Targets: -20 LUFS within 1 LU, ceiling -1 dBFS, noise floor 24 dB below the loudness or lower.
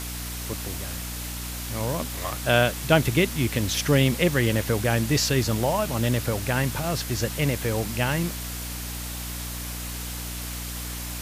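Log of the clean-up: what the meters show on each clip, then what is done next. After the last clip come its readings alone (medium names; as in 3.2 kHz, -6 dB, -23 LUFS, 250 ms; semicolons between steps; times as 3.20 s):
hum 60 Hz; highest harmonic 300 Hz; hum level -32 dBFS; noise floor -33 dBFS; noise floor target -50 dBFS; loudness -25.5 LUFS; peak level -3.5 dBFS; loudness target -20.0 LUFS
-> hum notches 60/120/180/240/300 Hz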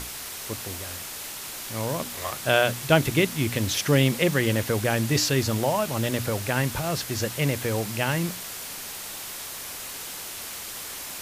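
hum not found; noise floor -37 dBFS; noise floor target -50 dBFS
-> noise reduction 13 dB, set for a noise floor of -37 dBFS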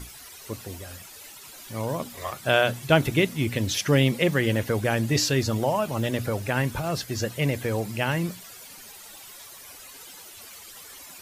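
noise floor -45 dBFS; noise floor target -49 dBFS
-> noise reduction 6 dB, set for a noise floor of -45 dBFS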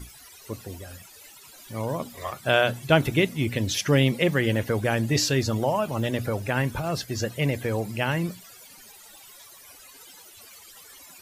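noise floor -49 dBFS; loudness -25.0 LUFS; peak level -3.5 dBFS; loudness target -20.0 LUFS
-> trim +5 dB; peak limiter -1 dBFS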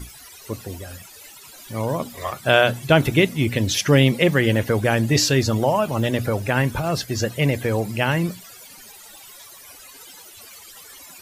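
loudness -20.0 LUFS; peak level -1.0 dBFS; noise floor -44 dBFS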